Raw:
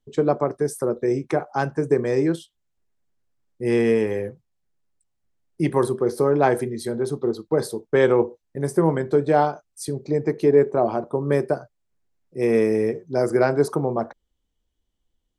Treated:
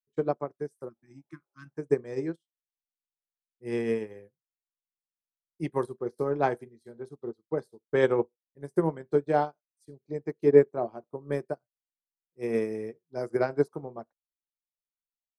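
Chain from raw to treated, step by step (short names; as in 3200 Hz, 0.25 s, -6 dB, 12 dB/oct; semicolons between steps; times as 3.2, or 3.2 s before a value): spectral repair 0.91–1.68, 360–1000 Hz after; upward expander 2.5:1, over -38 dBFS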